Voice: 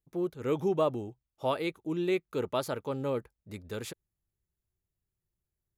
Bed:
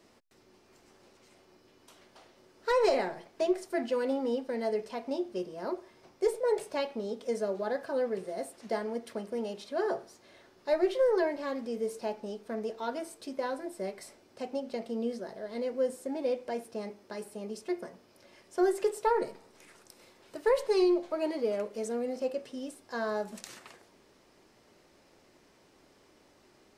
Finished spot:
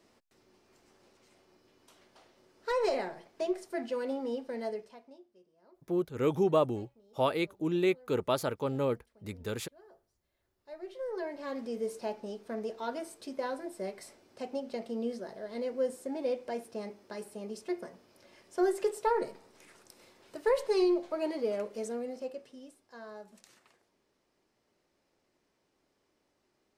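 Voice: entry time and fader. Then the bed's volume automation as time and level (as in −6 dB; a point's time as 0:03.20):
5.75 s, +1.5 dB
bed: 0:04.67 −4 dB
0:05.32 −27.5 dB
0:10.29 −27.5 dB
0:11.59 −1.5 dB
0:21.79 −1.5 dB
0:22.91 −14 dB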